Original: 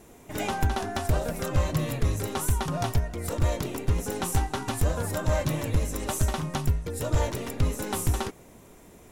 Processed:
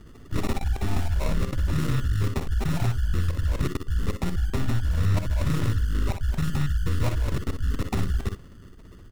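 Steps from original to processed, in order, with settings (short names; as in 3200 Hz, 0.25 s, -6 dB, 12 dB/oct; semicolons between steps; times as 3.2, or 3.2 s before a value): formant sharpening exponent 2; RIAA curve playback; sample-and-hold 28×; level quantiser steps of 23 dB; on a send: early reflections 50 ms -12 dB, 61 ms -8.5 dB; on the sum: Doppler distortion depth 0.45 ms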